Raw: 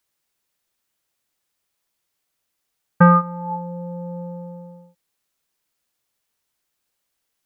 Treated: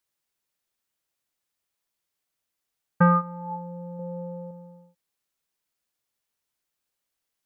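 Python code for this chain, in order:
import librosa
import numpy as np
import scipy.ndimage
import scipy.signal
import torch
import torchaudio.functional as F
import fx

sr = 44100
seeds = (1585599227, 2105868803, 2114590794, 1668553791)

y = fx.peak_eq(x, sr, hz=390.0, db=8.0, octaves=1.3, at=(3.99, 4.51))
y = y * librosa.db_to_amplitude(-6.5)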